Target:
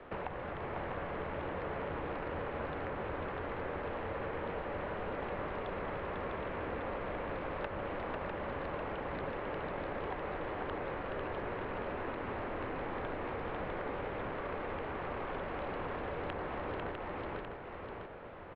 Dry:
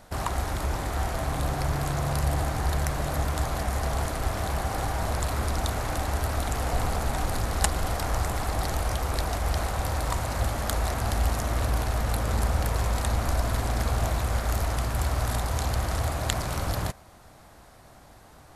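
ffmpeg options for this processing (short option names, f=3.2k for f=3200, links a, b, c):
-filter_complex "[0:a]asplit=2[a][b];[b]aecho=0:1:497:0.531[c];[a][c]amix=inputs=2:normalize=0,highpass=f=230:t=q:w=0.5412,highpass=f=230:t=q:w=1.307,lowpass=f=2.9k:t=q:w=0.5176,lowpass=f=2.9k:t=q:w=0.7071,lowpass=f=2.9k:t=q:w=1.932,afreqshift=-210,bandreject=f=50.67:t=h:w=4,bandreject=f=101.34:t=h:w=4,bandreject=f=152.01:t=h:w=4,bandreject=f=202.68:t=h:w=4,bandreject=f=253.35:t=h:w=4,bandreject=f=304.02:t=h:w=4,bandreject=f=354.69:t=h:w=4,bandreject=f=405.36:t=h:w=4,bandreject=f=456.03:t=h:w=4,bandreject=f=506.7:t=h:w=4,bandreject=f=557.37:t=h:w=4,bandreject=f=608.04:t=h:w=4,bandreject=f=658.71:t=h:w=4,bandreject=f=709.38:t=h:w=4,bandreject=f=760.05:t=h:w=4,bandreject=f=810.72:t=h:w=4,bandreject=f=861.39:t=h:w=4,bandreject=f=912.06:t=h:w=4,bandreject=f=962.73:t=h:w=4,bandreject=f=1.0134k:t=h:w=4,bandreject=f=1.06407k:t=h:w=4,bandreject=f=1.11474k:t=h:w=4,bandreject=f=1.16541k:t=h:w=4,bandreject=f=1.21608k:t=h:w=4,bandreject=f=1.26675k:t=h:w=4,bandreject=f=1.31742k:t=h:w=4,bandreject=f=1.36809k:t=h:w=4,bandreject=f=1.41876k:t=h:w=4,bandreject=f=1.46943k:t=h:w=4,bandreject=f=1.5201k:t=h:w=4,bandreject=f=1.57077k:t=h:w=4,acrossover=split=110|1600[d][e][f];[d]acompressor=threshold=-53dB:ratio=4[g];[e]acompressor=threshold=-45dB:ratio=4[h];[f]acompressor=threshold=-57dB:ratio=4[i];[g][h][i]amix=inputs=3:normalize=0,asplit=2[j][k];[k]aecho=0:1:651:0.596[l];[j][l]amix=inputs=2:normalize=0,volume=4dB"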